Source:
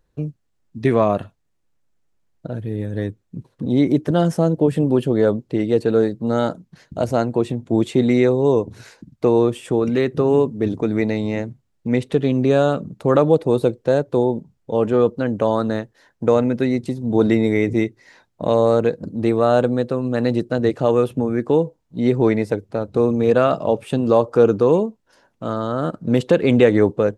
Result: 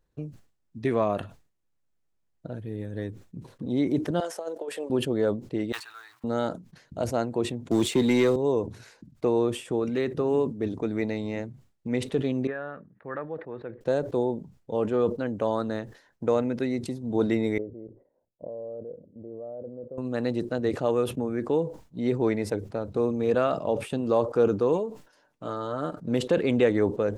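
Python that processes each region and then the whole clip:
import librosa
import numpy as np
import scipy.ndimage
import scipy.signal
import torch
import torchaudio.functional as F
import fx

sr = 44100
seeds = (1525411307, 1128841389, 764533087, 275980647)

y = fx.chain(x, sr, fx.highpass(hz=460.0, slope=24),
    fx.over_compress(threshold_db=-23.0, ratio=-0.5), at=(4.2, 4.9))
y = fx.chain(y, sr, fx.law_mismatch(coded='mu'),
    fx.cheby2_highpass(hz=540.0, order=4, stop_db=40),
    fx.high_shelf(hz=2300.0, db=-7.0), at=(5.72, 6.24))
y = fx.chain(y, sr, fx.leveller(passes=1),
    fx.high_shelf(hz=2900.0, db=9.5),
    fx.band_squash(depth_pct=40), at=(7.71, 8.36))
y = fx.chain(y, sr, fx.ladder_lowpass(hz=1900.0, resonance_pct=75),
    fx.tilt_eq(slope=1.5), at=(12.47, 13.81))
y = fx.chain(y, sr, fx.level_steps(step_db=13),
    fx.ladder_lowpass(hz=630.0, resonance_pct=60), at=(17.58, 19.98))
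y = fx.chain(y, sr, fx.low_shelf(hz=160.0, db=-7.0),
    fx.comb(ms=6.7, depth=0.41), at=(24.73, 26.0))
y = fx.dynamic_eq(y, sr, hz=140.0, q=1.4, threshold_db=-30.0, ratio=4.0, max_db=-4)
y = fx.sustainer(y, sr, db_per_s=130.0)
y = y * librosa.db_to_amplitude(-8.0)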